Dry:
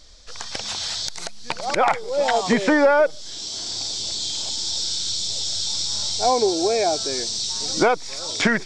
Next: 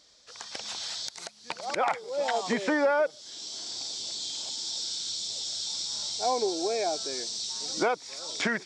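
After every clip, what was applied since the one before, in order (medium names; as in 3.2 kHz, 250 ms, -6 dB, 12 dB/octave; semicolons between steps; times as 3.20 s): Bessel high-pass 210 Hz, order 2; trim -8 dB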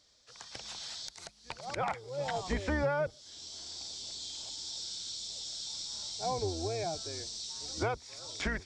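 octave divider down 2 oct, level +3 dB; trim -7 dB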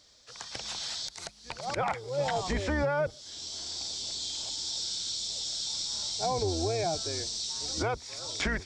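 peak limiter -27 dBFS, peak gain reduction 7.5 dB; trim +6.5 dB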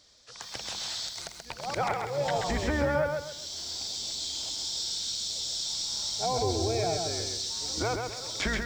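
bit-crushed delay 132 ms, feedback 35%, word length 9-bit, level -4 dB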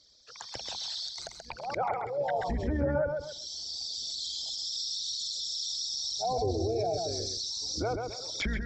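resonances exaggerated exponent 2; trim -1.5 dB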